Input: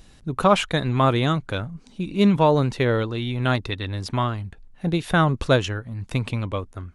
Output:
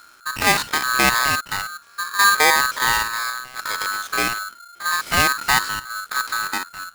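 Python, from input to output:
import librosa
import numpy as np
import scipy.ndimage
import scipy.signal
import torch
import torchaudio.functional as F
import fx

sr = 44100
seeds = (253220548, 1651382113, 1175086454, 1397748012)

y = fx.spec_steps(x, sr, hold_ms=50)
y = fx.over_compress(y, sr, threshold_db=-29.0, ratio=-0.5, at=(3.3, 3.95))
y = y * np.sign(np.sin(2.0 * np.pi * 1400.0 * np.arange(len(y)) / sr))
y = y * librosa.db_to_amplitude(2.0)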